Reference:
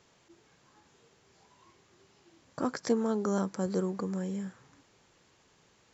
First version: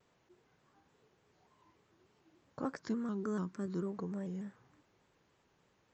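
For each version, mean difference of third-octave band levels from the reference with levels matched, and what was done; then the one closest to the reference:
3.0 dB: high-shelf EQ 3,800 Hz −11.5 dB
gain on a spectral selection 0:02.83–0:03.86, 410–970 Hz −10 dB
pitch modulation by a square or saw wave square 3.4 Hz, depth 100 cents
level −6 dB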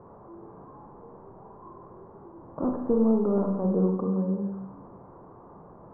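9.0 dB: linear delta modulator 32 kbit/s, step −44.5 dBFS
elliptic low-pass filter 1,100 Hz, stop band 70 dB
four-comb reverb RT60 0.97 s, combs from 32 ms, DRR 1.5 dB
level +4 dB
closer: first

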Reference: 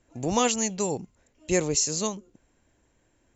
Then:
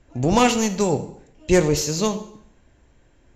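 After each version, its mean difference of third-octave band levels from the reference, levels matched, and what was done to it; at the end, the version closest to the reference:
5.0 dB: phase distortion by the signal itself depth 0.077 ms
low-pass filter 5,600 Hz 12 dB per octave
low-shelf EQ 92 Hz +8.5 dB
dense smooth reverb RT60 0.71 s, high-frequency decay 0.9×, DRR 8.5 dB
level +7 dB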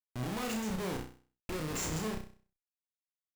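13.5 dB: flat-topped bell 4,600 Hz −11.5 dB 1.2 octaves
in parallel at 0 dB: downward compressor 6 to 1, threshold −40 dBFS, peak gain reduction 20.5 dB
on the sum: comparator with hysteresis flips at −31.5 dBFS
flutter between parallel walls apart 5.5 metres, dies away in 0.41 s
level −8 dB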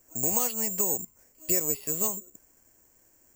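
10.0 dB: loose part that buzzes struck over −32 dBFS, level −32 dBFS
bass and treble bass −5 dB, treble −14 dB
downward compressor 5 to 1, threshold −31 dBFS, peak gain reduction 11.5 dB
bad sample-rate conversion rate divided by 6×, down filtered, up zero stuff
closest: first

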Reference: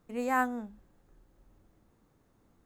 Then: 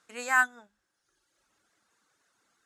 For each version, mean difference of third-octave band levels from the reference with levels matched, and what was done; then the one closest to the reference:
7.5 dB: meter weighting curve ITU-R 468
reverb reduction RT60 1.1 s
parametric band 1,500 Hz +8.5 dB 0.45 octaves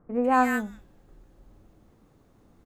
5.0 dB: high-shelf EQ 5,700 Hz −6 dB
notch filter 930 Hz, Q 21
multiband delay without the direct sound lows, highs 150 ms, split 1,600 Hz
level +8.5 dB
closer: second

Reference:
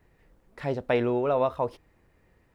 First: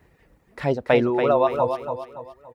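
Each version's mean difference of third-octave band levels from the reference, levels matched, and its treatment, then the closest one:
3.5 dB: high-pass filter 47 Hz
reverb reduction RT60 1.8 s
repeating echo 284 ms, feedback 38%, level −7 dB
level +7 dB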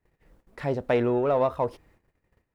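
1.0 dB: noise gate −60 dBFS, range −18 dB
dynamic equaliser 3,500 Hz, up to −4 dB, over −48 dBFS, Q 1
in parallel at −8 dB: soft clipping −27 dBFS, distortion −9 dB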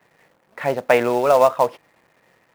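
6.5 dB: high-pass filter 130 Hz 24 dB per octave
flat-topped bell 1,200 Hz +9 dB 2.7 octaves
in parallel at −6 dB: log-companded quantiser 4 bits
on the sum: level −1 dB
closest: second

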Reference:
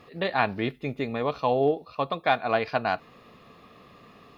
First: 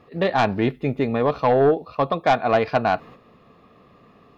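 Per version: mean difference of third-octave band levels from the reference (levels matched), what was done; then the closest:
4.0 dB: noise gate −48 dBFS, range −8 dB
high-shelf EQ 2,000 Hz −10 dB
sine wavefolder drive 5 dB, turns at −10.5 dBFS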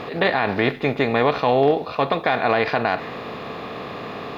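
7.0 dB: compressor on every frequency bin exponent 0.6
dynamic equaliser 1,900 Hz, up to +6 dB, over −46 dBFS, Q 4.4
boost into a limiter +11.5 dB
level −6 dB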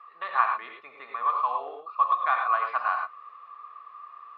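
12.0 dB: four-pole ladder band-pass 1,200 Hz, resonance 85%
reverb whose tail is shaped and stops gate 130 ms rising, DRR 2.5 dB
level +6.5 dB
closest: first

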